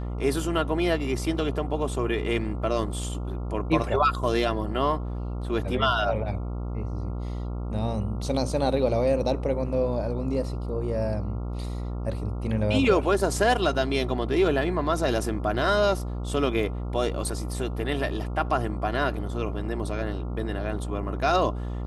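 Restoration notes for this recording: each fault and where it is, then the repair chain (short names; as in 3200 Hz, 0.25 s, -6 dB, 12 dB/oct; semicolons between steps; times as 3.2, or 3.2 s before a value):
buzz 60 Hz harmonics 23 -31 dBFS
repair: de-hum 60 Hz, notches 23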